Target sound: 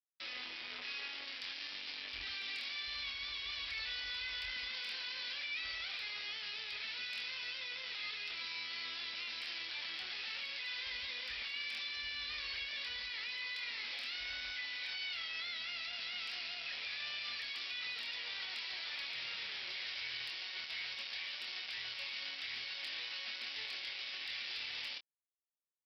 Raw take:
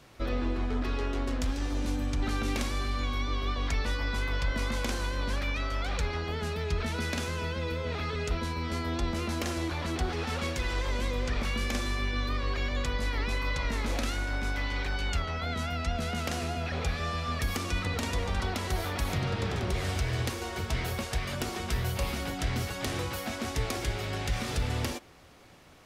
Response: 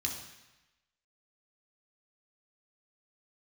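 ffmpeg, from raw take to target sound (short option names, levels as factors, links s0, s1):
-filter_complex "[0:a]asplit=2[s0][s1];[s1]asoftclip=type=tanh:threshold=0.0158,volume=0.316[s2];[s0][s2]amix=inputs=2:normalize=0,tiltshelf=f=970:g=-8,aecho=1:1:80|160|240|320:0.119|0.063|0.0334|0.0177,aresample=11025,acrusher=bits=4:mix=0:aa=0.5,aresample=44100,asoftclip=type=hard:threshold=0.0891,highshelf=f=1700:t=q:w=1.5:g=8,alimiter=level_in=1.88:limit=0.0631:level=0:latency=1:release=14,volume=0.531,afwtdn=0.0447,highpass=f=690:p=1,asplit=2[s3][s4];[s4]adelay=25,volume=0.398[s5];[s3][s5]amix=inputs=2:normalize=0,volume=4.22"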